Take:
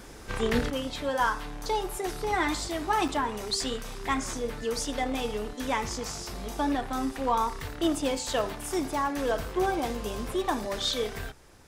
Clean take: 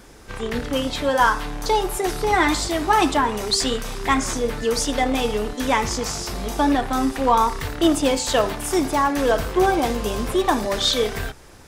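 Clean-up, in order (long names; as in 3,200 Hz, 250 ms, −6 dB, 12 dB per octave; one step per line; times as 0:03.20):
repair the gap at 0:03.08, 5.5 ms
level 0 dB, from 0:00.70 +9 dB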